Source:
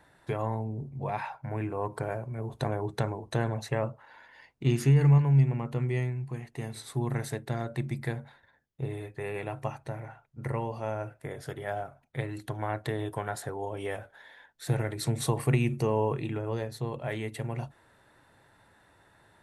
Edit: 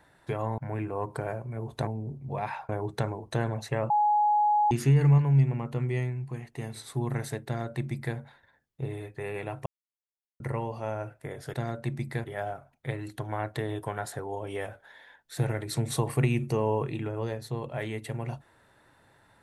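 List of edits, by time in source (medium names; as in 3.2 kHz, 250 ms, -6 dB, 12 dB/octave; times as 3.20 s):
0.58–1.40 s: move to 2.69 s
3.90–4.71 s: bleep 837 Hz -20 dBFS
7.46–8.16 s: copy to 11.54 s
9.66–10.40 s: mute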